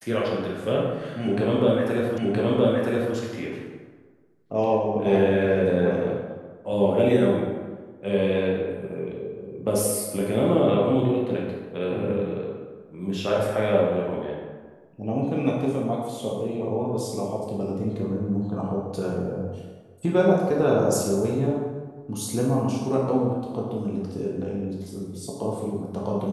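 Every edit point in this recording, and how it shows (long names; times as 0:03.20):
0:02.18: the same again, the last 0.97 s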